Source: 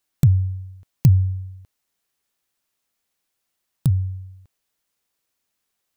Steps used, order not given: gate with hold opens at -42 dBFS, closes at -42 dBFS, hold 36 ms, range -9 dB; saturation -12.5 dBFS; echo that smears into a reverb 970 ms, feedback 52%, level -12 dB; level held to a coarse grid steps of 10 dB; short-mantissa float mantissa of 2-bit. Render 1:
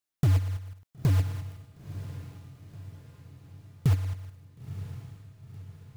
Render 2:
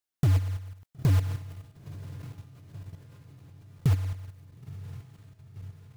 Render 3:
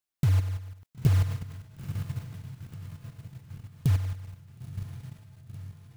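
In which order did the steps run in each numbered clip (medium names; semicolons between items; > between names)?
saturation > short-mantissa float > level held to a coarse grid > gate with hold > echo that smears into a reverb; saturation > short-mantissa float > gate with hold > echo that smears into a reverb > level held to a coarse grid; short-mantissa float > gate with hold > echo that smears into a reverb > level held to a coarse grid > saturation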